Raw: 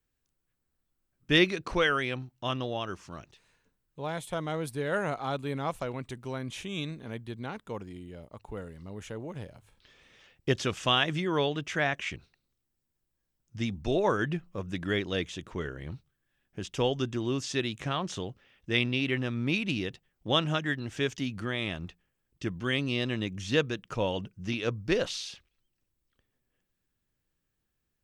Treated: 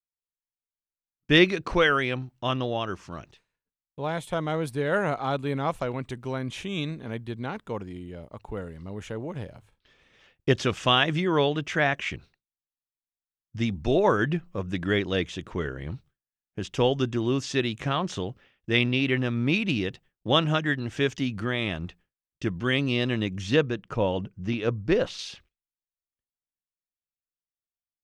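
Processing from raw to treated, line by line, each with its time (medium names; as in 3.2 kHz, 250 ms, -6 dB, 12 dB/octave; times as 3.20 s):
23.56–25.19 s: treble shelf 2.2 kHz -7.5 dB
whole clip: expander -54 dBFS; treble shelf 5.3 kHz -7.5 dB; trim +5 dB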